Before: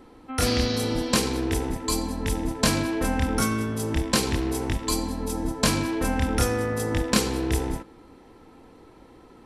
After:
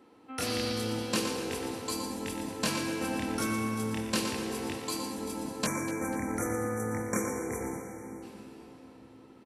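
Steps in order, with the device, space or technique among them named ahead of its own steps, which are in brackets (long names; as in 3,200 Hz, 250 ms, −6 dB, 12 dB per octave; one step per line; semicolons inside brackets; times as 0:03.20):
PA in a hall (high-pass filter 160 Hz 12 dB per octave; parametric band 2,700 Hz +4.5 dB 0.22 octaves; single-tap delay 118 ms −8 dB; convolution reverb RT60 4.2 s, pre-delay 3 ms, DRR 5 dB)
0:04.75–0:05.17: high-pass filter 110 Hz
0:05.66–0:08.23: time-frequency box erased 2,400–5,600 Hz
repeating echo 246 ms, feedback 41%, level −15.5 dB
level −8.5 dB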